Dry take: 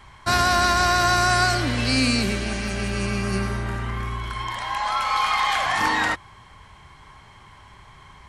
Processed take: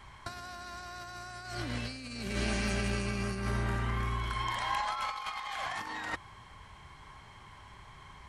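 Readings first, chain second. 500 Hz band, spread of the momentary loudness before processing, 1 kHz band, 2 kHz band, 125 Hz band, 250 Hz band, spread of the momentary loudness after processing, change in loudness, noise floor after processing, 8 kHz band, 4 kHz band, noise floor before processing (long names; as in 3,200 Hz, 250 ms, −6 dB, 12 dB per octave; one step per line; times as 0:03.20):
−12.5 dB, 11 LU, −14.5 dB, −14.5 dB, −9.0 dB, −12.0 dB, 20 LU, −13.5 dB, −53 dBFS, −15.5 dB, −15.0 dB, −49 dBFS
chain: compressor whose output falls as the input rises −26 dBFS, ratio −0.5
level −8.5 dB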